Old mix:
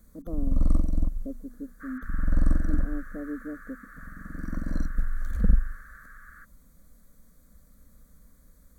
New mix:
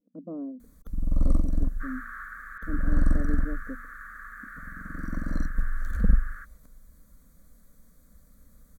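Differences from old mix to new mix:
first sound: entry +0.60 s; second sound +5.5 dB

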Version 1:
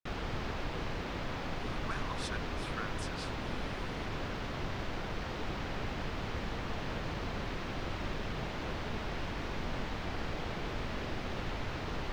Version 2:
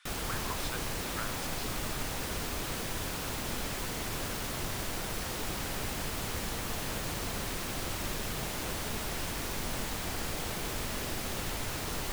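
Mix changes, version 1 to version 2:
speech: entry -1.60 s; background: remove air absorption 230 m

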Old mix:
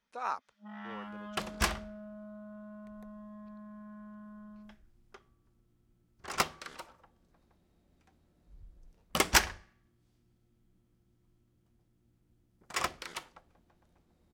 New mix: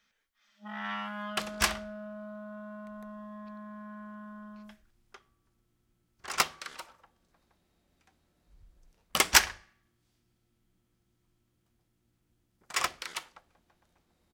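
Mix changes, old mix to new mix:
speech: muted; first sound +7.0 dB; master: add tilt shelf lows -5 dB, about 740 Hz

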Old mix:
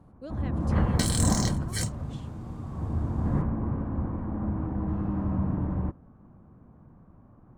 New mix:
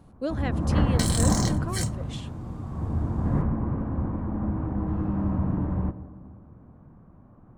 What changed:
speech +12.0 dB; reverb: on, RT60 1.9 s

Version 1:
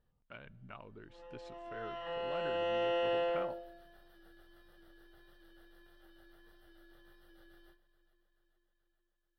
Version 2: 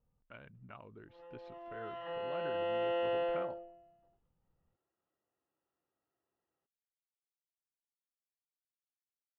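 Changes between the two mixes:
speech: send off; first sound: muted; master: add air absorption 230 m

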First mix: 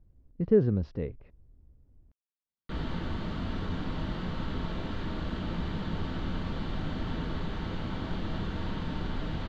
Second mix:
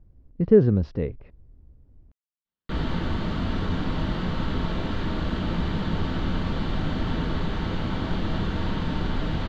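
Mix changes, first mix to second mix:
speech +6.5 dB; background +7.0 dB

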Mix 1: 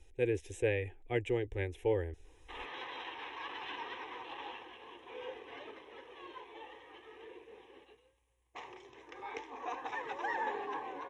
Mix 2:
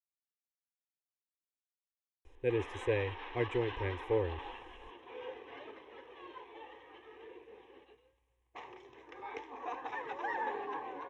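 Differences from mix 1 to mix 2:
speech: entry +2.25 s; master: add LPF 2900 Hz 6 dB/oct

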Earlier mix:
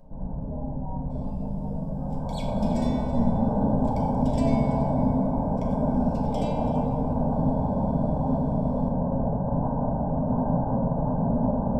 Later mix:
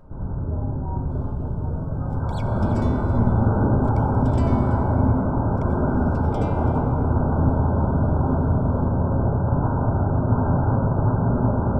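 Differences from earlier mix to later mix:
second sound: send off; master: remove fixed phaser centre 360 Hz, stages 6

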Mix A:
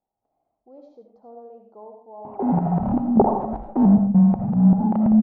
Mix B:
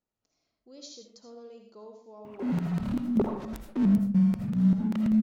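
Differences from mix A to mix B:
background -7.0 dB; master: remove synth low-pass 790 Hz, resonance Q 7.2

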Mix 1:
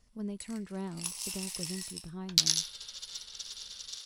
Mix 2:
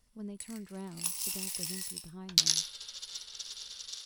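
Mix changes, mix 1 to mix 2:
speech -4.5 dB; first sound: remove LPF 9800 Hz 12 dB/oct

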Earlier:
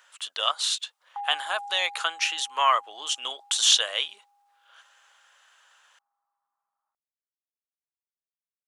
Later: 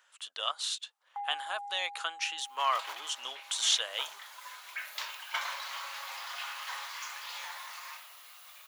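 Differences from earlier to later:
speech -8.0 dB; first sound: remove synth low-pass 1200 Hz, resonance Q 2; second sound: unmuted

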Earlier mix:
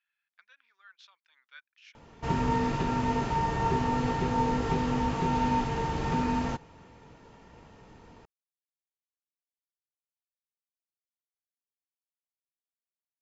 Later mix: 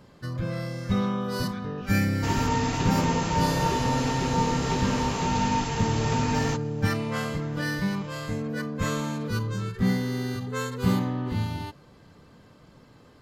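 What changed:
first sound: unmuted; second sound: add high shelf 2500 Hz +9.5 dB; master: remove air absorption 59 m

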